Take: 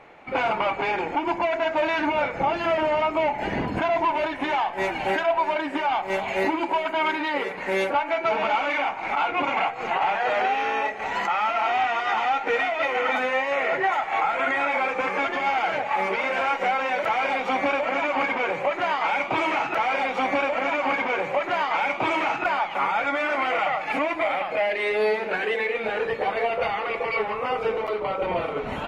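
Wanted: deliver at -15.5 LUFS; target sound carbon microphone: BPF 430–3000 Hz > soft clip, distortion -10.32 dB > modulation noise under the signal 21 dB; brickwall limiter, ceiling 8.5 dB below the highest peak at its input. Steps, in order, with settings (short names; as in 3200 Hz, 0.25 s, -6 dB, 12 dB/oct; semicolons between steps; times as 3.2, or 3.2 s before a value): limiter -20.5 dBFS; BPF 430–3000 Hz; soft clip -31.5 dBFS; modulation noise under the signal 21 dB; gain +18.5 dB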